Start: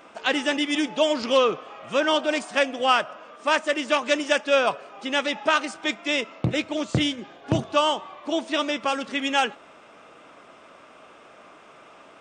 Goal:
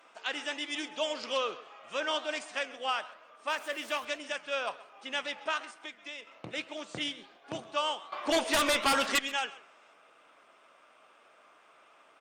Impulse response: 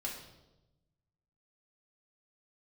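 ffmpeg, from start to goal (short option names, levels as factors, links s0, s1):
-filter_complex "[0:a]asettb=1/sr,asplit=3[s0][s1][s2];[s0]atrim=end=3.504[s3];[s1]atrim=start=3.5:end=4.05,asetpts=PTS-STARTPTS,afade=t=in:d=0.004:c=qsin,afade=t=out:st=0.546:d=0.004:c=qsin,aeval=exprs='val(0)+0.5*0.0224*sgn(val(0))':c=same[s4];[s2]atrim=start=4.046[s5];[s3][s4]acrossfade=d=0.004:c1=hsin:c2=qsin[s6];[s6][s5]acrossfade=d=0.004:c1=qsin:c2=hsin,highpass=f=900:p=1,asettb=1/sr,asplit=3[s7][s8][s9];[s7]atrim=end=5.614[s10];[s8]atrim=start=5.61:end=6.27,asetpts=PTS-STARTPTS,afade=t=in:d=0.004:c=qsin,afade=t=out:st=0.656:d=0.004:c=qsin,acompressor=threshold=0.02:ratio=4[s11];[s9]atrim=start=6.266[s12];[s10][s11]acrossfade=d=0.004:c1=hsin:c2=qsin[s13];[s13][s12]acrossfade=d=0.004:c1=qsin:c2=hsin,alimiter=limit=0.266:level=0:latency=1:release=405,flanger=delay=5.7:depth=8.8:regen=89:speed=1.2:shape=triangular,asettb=1/sr,asplit=3[s14][s15][s16];[s14]atrim=end=8.124[s17];[s15]atrim=start=8.12:end=9.19,asetpts=PTS-STARTPTS,afade=t=in:d=0.004:c=qsin,afade=t=out:st=1.066:d=0.004:c=qsin,aeval=exprs='0.126*sin(PI/2*3.55*val(0)/0.126)':c=same[s18];[s16]atrim=start=9.186[s19];[s17][s18]acrossfade=d=0.004:c1=hsin:c2=qsin[s20];[s20][s19]acrossfade=d=0.004:c1=qsin:c2=hsin,asplit=2[s21][s22];[s22]aecho=0:1:132:0.119[s23];[s21][s23]amix=inputs=2:normalize=0,volume=0.75" -ar 48000 -c:a libopus -b:a 48k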